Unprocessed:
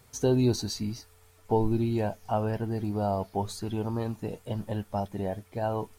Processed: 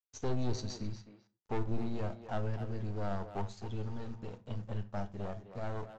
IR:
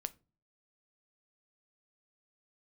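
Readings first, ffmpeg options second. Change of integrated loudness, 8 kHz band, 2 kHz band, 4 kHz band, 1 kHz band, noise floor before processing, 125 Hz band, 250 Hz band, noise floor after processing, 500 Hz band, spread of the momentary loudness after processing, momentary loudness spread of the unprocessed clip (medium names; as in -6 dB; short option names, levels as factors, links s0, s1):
-9.5 dB, under -10 dB, -5.0 dB, -10.0 dB, -10.0 dB, -59 dBFS, -7.5 dB, -11.0 dB, -79 dBFS, -11.0 dB, 7 LU, 9 LU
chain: -filter_complex "[0:a]equalizer=f=100:t=o:w=1:g=4.5,aeval=exprs='(tanh(17.8*val(0)+0.7)-tanh(0.7))/17.8':c=same,aresample=16000,aeval=exprs='sgn(val(0))*max(abs(val(0))-0.00316,0)':c=same,aresample=44100,asplit=2[s0][s1];[s1]adelay=260,highpass=300,lowpass=3400,asoftclip=type=hard:threshold=0.0335,volume=0.355[s2];[s0][s2]amix=inputs=2:normalize=0[s3];[1:a]atrim=start_sample=2205,afade=t=out:st=0.2:d=0.01,atrim=end_sample=9261,asetrate=31752,aresample=44100[s4];[s3][s4]afir=irnorm=-1:irlink=0,volume=0.596"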